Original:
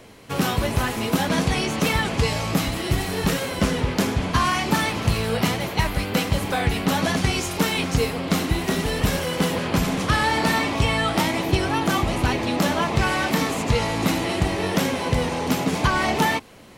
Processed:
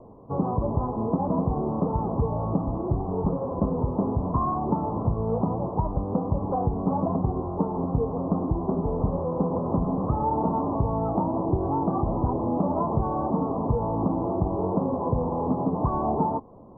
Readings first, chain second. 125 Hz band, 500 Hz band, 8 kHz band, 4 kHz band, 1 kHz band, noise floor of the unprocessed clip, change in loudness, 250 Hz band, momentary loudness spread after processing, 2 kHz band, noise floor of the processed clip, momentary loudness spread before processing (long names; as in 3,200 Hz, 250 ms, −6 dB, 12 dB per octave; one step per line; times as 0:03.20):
−2.5 dB, −2.0 dB, below −40 dB, below −40 dB, −3.0 dB, −30 dBFS, −4.0 dB, −2.0 dB, 2 LU, below −40 dB, −31 dBFS, 3 LU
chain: Butterworth low-pass 1,100 Hz 72 dB per octave
downward compressor 2 to 1, threshold −22 dBFS, peak gain reduction 4.5 dB